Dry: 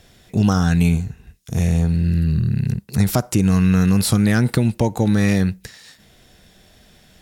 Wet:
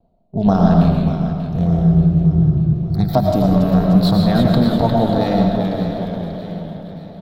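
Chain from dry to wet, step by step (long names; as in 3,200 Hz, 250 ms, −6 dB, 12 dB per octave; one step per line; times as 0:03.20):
adaptive Wiener filter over 25 samples
noise gate with hold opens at −42 dBFS
noise reduction from a noise print of the clip's start 15 dB
amplitude modulation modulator 220 Hz, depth 35%
drawn EQ curve 110 Hz 0 dB, 170 Hz +4 dB, 460 Hz −3 dB, 680 Hz +10 dB, 1,000 Hz +1 dB, 2,400 Hz −13 dB, 4,000 Hz +2 dB, 5,900 Hz −17 dB, 10,000 Hz −25 dB, 14,000 Hz −7 dB
in parallel at +1 dB: downward compressor, threshold −30 dBFS, peak gain reduction 16 dB
on the sum: comb filter 4.4 ms, depth 32%
repeating echo 588 ms, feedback 48%, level −11 dB
on a send at −2 dB: convolution reverb RT60 1.1 s, pre-delay 70 ms
on the sum: delay with pitch and tempo change per echo 84 ms, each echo −1 semitone, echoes 3, each echo −6 dB
level +1 dB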